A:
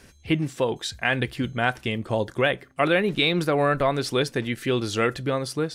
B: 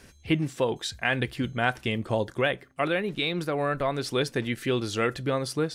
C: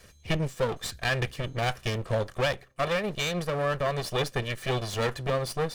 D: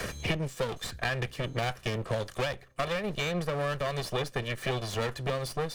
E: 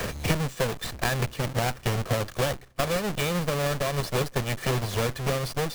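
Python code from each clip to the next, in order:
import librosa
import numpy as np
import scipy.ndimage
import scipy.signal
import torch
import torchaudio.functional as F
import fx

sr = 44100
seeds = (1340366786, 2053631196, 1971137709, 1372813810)

y1 = fx.rider(x, sr, range_db=10, speed_s=0.5)
y1 = y1 * 10.0 ** (-3.5 / 20.0)
y2 = fx.lower_of_two(y1, sr, delay_ms=1.7)
y3 = fx.band_squash(y2, sr, depth_pct=100)
y3 = y3 * 10.0 ** (-4.0 / 20.0)
y4 = fx.halfwave_hold(y3, sr)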